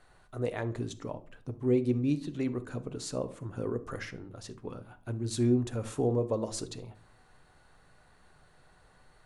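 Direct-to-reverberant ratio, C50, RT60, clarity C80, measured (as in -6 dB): 10.5 dB, 16.0 dB, 0.45 s, 22.0 dB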